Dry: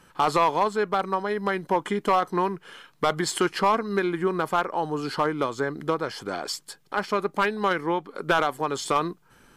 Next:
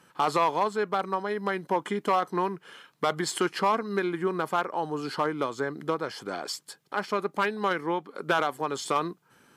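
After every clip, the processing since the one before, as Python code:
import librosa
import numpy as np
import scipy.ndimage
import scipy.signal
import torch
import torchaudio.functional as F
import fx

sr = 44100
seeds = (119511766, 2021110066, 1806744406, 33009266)

y = scipy.signal.sosfilt(scipy.signal.butter(2, 120.0, 'highpass', fs=sr, output='sos'), x)
y = y * librosa.db_to_amplitude(-3.0)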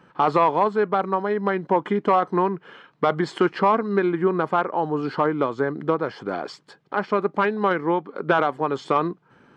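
y = fx.spacing_loss(x, sr, db_at_10k=31)
y = y * librosa.db_to_amplitude(8.5)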